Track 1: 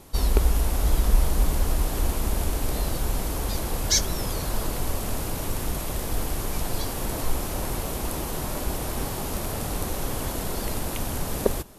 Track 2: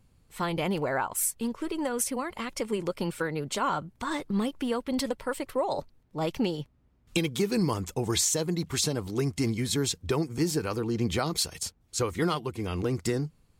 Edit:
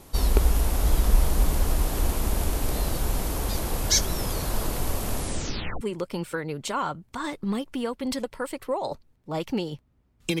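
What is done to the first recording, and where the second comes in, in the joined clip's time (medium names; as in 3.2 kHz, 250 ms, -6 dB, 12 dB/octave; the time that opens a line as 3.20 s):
track 1
5.14 s: tape stop 0.67 s
5.81 s: go over to track 2 from 2.68 s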